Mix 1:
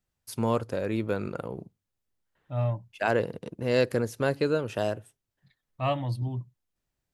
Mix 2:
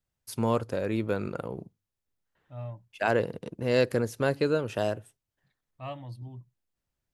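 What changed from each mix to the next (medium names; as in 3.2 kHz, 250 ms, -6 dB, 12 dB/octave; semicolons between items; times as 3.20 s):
second voice -11.0 dB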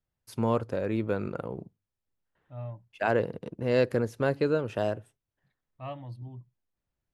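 master: add treble shelf 3.9 kHz -10 dB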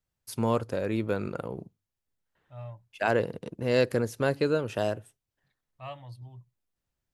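second voice: add peaking EQ 260 Hz -12 dB 1.3 oct; master: add treble shelf 3.9 kHz +10 dB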